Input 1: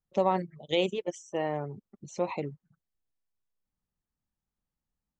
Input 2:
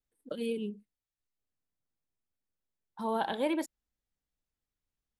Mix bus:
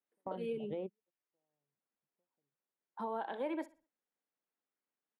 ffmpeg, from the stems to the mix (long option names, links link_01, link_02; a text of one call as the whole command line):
ffmpeg -i stem1.wav -i stem2.wav -filter_complex "[0:a]lowpass=1000,acompressor=threshold=-30dB:ratio=6,volume=-2.5dB[link_01];[1:a]highpass=frequency=160:width=0.5412,highpass=frequency=160:width=1.3066,acrossover=split=260 2500:gain=0.224 1 0.141[link_02][link_03][link_04];[link_02][link_03][link_04]amix=inputs=3:normalize=0,volume=1.5dB,asplit=3[link_05][link_06][link_07];[link_06]volume=-20dB[link_08];[link_07]apad=whole_len=228928[link_09];[link_01][link_09]sidechaingate=range=-52dB:threshold=-59dB:ratio=16:detection=peak[link_10];[link_08]aecho=0:1:62|124|186|248:1|0.29|0.0841|0.0244[link_11];[link_10][link_05][link_11]amix=inputs=3:normalize=0,alimiter=level_in=5.5dB:limit=-24dB:level=0:latency=1:release=484,volume=-5.5dB" out.wav